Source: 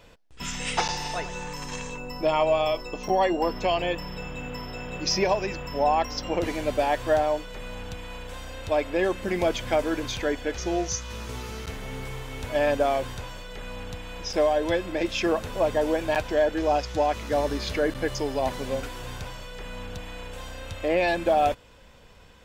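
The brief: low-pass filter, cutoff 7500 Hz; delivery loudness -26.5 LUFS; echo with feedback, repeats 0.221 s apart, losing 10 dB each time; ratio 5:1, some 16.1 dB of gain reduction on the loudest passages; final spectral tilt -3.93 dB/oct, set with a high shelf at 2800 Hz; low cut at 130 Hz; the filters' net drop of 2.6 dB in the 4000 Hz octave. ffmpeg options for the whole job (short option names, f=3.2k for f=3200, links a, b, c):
-af "highpass=130,lowpass=7.5k,highshelf=f=2.8k:g=3.5,equalizer=f=4k:t=o:g=-6.5,acompressor=threshold=-37dB:ratio=5,aecho=1:1:221|442|663|884:0.316|0.101|0.0324|0.0104,volume=13dB"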